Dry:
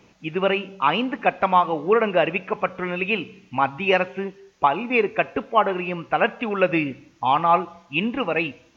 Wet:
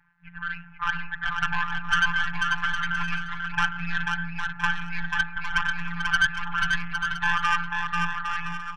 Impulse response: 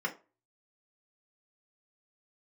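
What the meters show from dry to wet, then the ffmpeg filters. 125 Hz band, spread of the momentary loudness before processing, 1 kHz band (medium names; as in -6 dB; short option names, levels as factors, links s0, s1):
-2.5 dB, 8 LU, -7.5 dB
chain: -filter_complex "[0:a]aeval=exprs='if(lt(val(0),0),0.251*val(0),val(0))':c=same,acrossover=split=240|910[s0][s1][s2];[s1]acompressor=threshold=0.0178:ratio=6[s3];[s2]alimiter=limit=0.119:level=0:latency=1:release=433[s4];[s0][s3][s4]amix=inputs=3:normalize=0,dynaudnorm=f=100:g=17:m=4.73,equalizer=f=190:t=o:w=0.23:g=3,aeval=exprs='val(0)*sin(2*PI*26*n/s)':c=same,lowpass=f=1600:t=q:w=12,afftfilt=real='hypot(re,im)*cos(PI*b)':imag='0':win_size=1024:overlap=0.75,aeval=exprs='(tanh(3.55*val(0)+0.45)-tanh(0.45))/3.55':c=same,afftfilt=real='re*(1-between(b*sr/4096,180,720))':imag='im*(1-between(b*sr/4096,180,720))':win_size=4096:overlap=0.75,aecho=1:1:490|808.5|1016|1150|1238:0.631|0.398|0.251|0.158|0.1,volume=0.708"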